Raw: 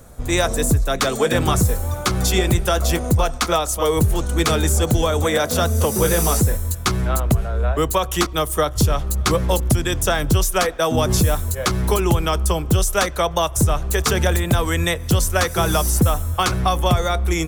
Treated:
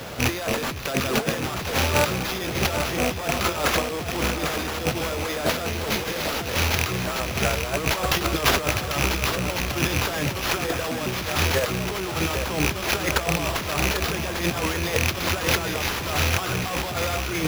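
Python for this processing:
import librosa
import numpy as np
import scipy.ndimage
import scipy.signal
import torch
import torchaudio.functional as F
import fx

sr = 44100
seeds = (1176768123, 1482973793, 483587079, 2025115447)

p1 = fx.rattle_buzz(x, sr, strikes_db=-26.0, level_db=-18.0)
p2 = fx.low_shelf(p1, sr, hz=140.0, db=-7.5)
p3 = 10.0 ** (-21.0 / 20.0) * np.tanh(p2 / 10.0 ** (-21.0 / 20.0))
p4 = fx.over_compress(p3, sr, threshold_db=-30.0, ratio=-0.5)
p5 = fx.high_shelf(p4, sr, hz=12000.0, db=5.0)
p6 = fx.mod_noise(p5, sr, seeds[0], snr_db=13)
p7 = scipy.signal.sosfilt(scipy.signal.butter(4, 77.0, 'highpass', fs=sr, output='sos'), p6)
p8 = p7 + fx.echo_feedback(p7, sr, ms=795, feedback_pct=46, wet_db=-7.5, dry=0)
p9 = fx.sample_hold(p8, sr, seeds[1], rate_hz=8500.0, jitter_pct=0)
y = p9 * librosa.db_to_amplitude(6.5)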